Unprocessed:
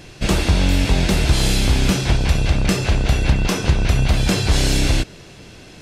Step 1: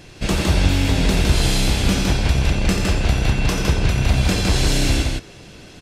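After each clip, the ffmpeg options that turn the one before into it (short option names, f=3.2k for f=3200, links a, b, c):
-af "aecho=1:1:87.46|160.3:0.398|0.708,volume=-2.5dB"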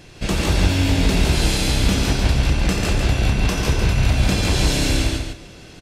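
-af "aecho=1:1:142|284|426:0.631|0.101|0.0162,volume=-1.5dB"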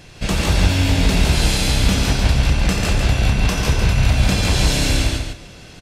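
-af "equalizer=f=340:w=2:g=-5,volume=2dB"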